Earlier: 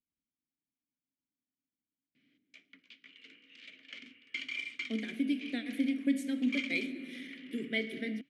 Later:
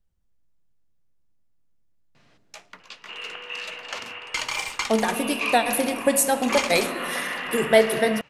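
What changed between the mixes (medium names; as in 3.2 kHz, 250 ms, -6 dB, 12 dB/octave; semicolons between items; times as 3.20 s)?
second sound +12.0 dB; master: remove vowel filter i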